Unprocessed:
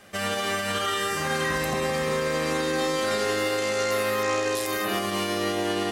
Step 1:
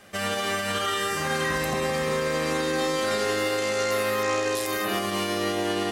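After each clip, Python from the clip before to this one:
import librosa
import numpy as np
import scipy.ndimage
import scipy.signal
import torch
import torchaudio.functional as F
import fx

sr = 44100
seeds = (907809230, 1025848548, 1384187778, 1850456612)

y = x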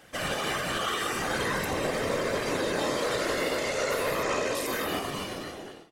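y = fx.fade_out_tail(x, sr, length_s=1.14)
y = fx.whisperise(y, sr, seeds[0])
y = y * librosa.db_to_amplitude(-3.0)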